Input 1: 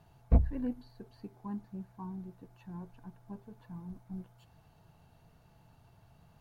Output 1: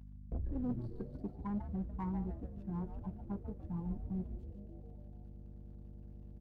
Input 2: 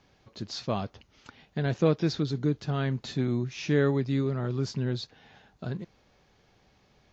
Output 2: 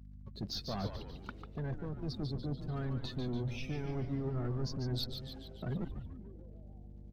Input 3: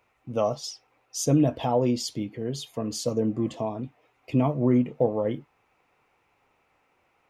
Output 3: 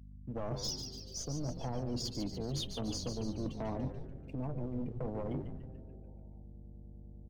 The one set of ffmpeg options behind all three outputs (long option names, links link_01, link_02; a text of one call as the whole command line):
ffmpeg -i in.wav -filter_complex "[0:a]aeval=exprs='0.335*(cos(1*acos(clip(val(0)/0.335,-1,1)))-cos(1*PI/2))+0.0335*(cos(6*acos(clip(val(0)/0.335,-1,1)))-cos(6*PI/2))':channel_layout=same,highshelf=frequency=4400:gain=-3.5,bandreject=frequency=7400:width=12,acrossover=split=200|6300[link_01][link_02][link_03];[link_01]acompressor=threshold=-20dB:ratio=4[link_04];[link_02]acompressor=threshold=-30dB:ratio=4[link_05];[link_03]acompressor=threshold=-45dB:ratio=4[link_06];[link_04][link_05][link_06]amix=inputs=3:normalize=0,alimiter=limit=-19.5dB:level=0:latency=1:release=420,areverse,acompressor=threshold=-38dB:ratio=12,areverse,aeval=exprs='sgn(val(0))*max(abs(val(0))-0.00126,0)':channel_layout=same,afftdn=noise_reduction=16:noise_floor=-53,asoftclip=type=tanh:threshold=-39.5dB,aeval=exprs='val(0)+0.00126*(sin(2*PI*50*n/s)+sin(2*PI*2*50*n/s)/2+sin(2*PI*3*50*n/s)/3+sin(2*PI*4*50*n/s)/4+sin(2*PI*5*50*n/s)/5)':channel_layout=same,asplit=8[link_07][link_08][link_09][link_10][link_11][link_12][link_13][link_14];[link_08]adelay=145,afreqshift=-130,volume=-7dB[link_15];[link_09]adelay=290,afreqshift=-260,volume=-11.9dB[link_16];[link_10]adelay=435,afreqshift=-390,volume=-16.8dB[link_17];[link_11]adelay=580,afreqshift=-520,volume=-21.6dB[link_18];[link_12]adelay=725,afreqshift=-650,volume=-26.5dB[link_19];[link_13]adelay=870,afreqshift=-780,volume=-31.4dB[link_20];[link_14]adelay=1015,afreqshift=-910,volume=-36.3dB[link_21];[link_07][link_15][link_16][link_17][link_18][link_19][link_20][link_21]amix=inputs=8:normalize=0,volume=8dB" out.wav